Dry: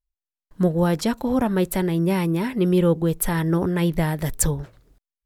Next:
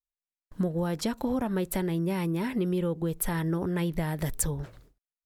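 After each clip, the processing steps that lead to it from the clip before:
noise gate with hold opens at −42 dBFS
downward compressor 6 to 1, threshold −28 dBFS, peak gain reduction 13.5 dB
level +2 dB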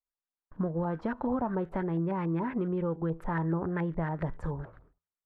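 tuned comb filter 82 Hz, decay 0.35 s, harmonics all, mix 40%
auto-filter low-pass saw up 7.1 Hz 820–1,700 Hz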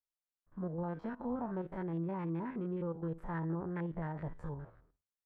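spectrum averaged block by block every 50 ms
level −6.5 dB

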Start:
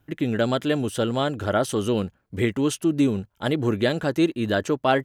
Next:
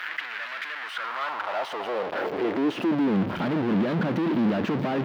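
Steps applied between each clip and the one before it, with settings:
sign of each sample alone
high-frequency loss of the air 360 metres
high-pass filter sweep 1,700 Hz → 200 Hz, 0:00.76–0:03.17
level −2.5 dB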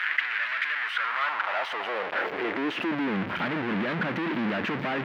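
parametric band 2,000 Hz +13.5 dB 1.9 octaves
level −6.5 dB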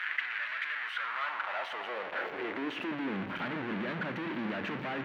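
notch filter 5,000 Hz, Q 18
on a send at −10 dB: convolution reverb RT60 1.1 s, pre-delay 3 ms
on the sum: level −7.5 dB

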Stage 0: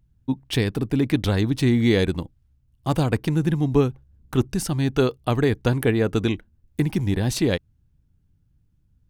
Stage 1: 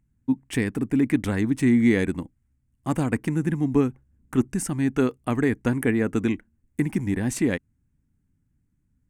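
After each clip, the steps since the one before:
octave-band graphic EQ 250/1,000/2,000/4,000/8,000 Hz +11/+3/+11/−11/+12 dB
level −8.5 dB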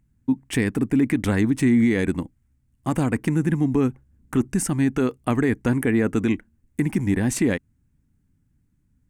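brickwall limiter −15.5 dBFS, peak gain reduction 6.5 dB
level +4 dB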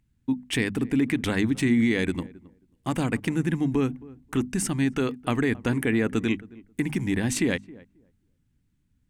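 parametric band 3,400 Hz +8.5 dB 1.3 octaves
mains-hum notches 50/100/150/200/250 Hz
feedback echo with a low-pass in the loop 269 ms, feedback 17%, low-pass 940 Hz, level −20 dB
level −3.5 dB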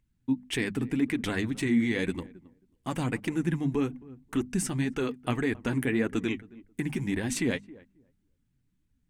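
flanger 1.8 Hz, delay 1.8 ms, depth 6.9 ms, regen +38%

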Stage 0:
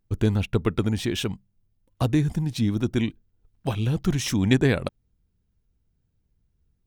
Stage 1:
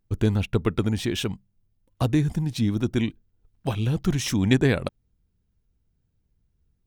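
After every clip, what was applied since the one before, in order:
no processing that can be heard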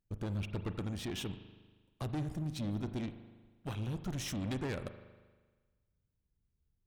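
tube saturation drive 25 dB, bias 0.55
spring reverb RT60 1.4 s, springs 39 ms, chirp 40 ms, DRR 10 dB
level −8.5 dB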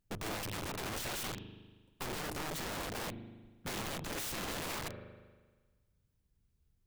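wrap-around overflow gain 40 dB
level +5 dB

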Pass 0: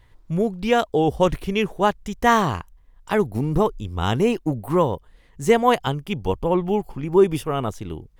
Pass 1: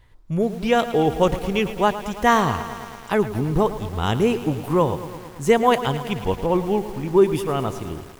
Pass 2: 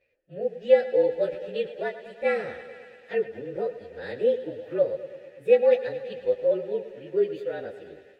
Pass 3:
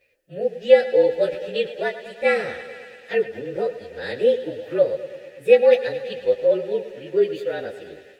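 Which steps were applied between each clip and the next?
feedback echo at a low word length 110 ms, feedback 80%, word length 6 bits, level −13 dB
partials spread apart or drawn together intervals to 110%; formant filter e; level +5.5 dB
high-shelf EQ 2,600 Hz +9.5 dB; level +4.5 dB

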